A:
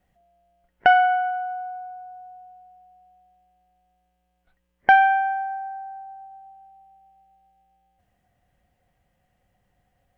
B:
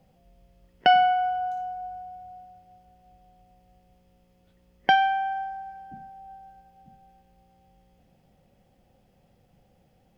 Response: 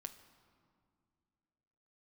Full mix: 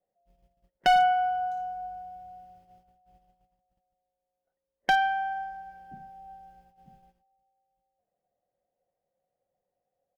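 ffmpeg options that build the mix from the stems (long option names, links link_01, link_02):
-filter_complex "[0:a]bandpass=frequency=530:width_type=q:width=3.4:csg=0,volume=-4dB[link_01];[1:a]agate=range=-35dB:threshold=-55dB:ratio=16:detection=peak,equalizer=frequency=220:width_type=o:width=0.29:gain=-4,aecho=1:1:5.3:0.32,volume=-2dB[link_02];[link_01][link_02]amix=inputs=2:normalize=0,asoftclip=type=hard:threshold=-16dB"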